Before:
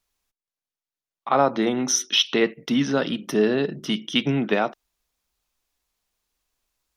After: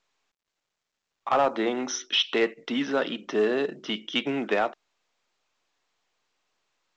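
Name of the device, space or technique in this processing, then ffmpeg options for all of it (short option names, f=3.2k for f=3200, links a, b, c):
telephone: -af "highpass=350,lowpass=3.4k,asoftclip=type=tanh:threshold=-13.5dB" -ar 16000 -c:a pcm_mulaw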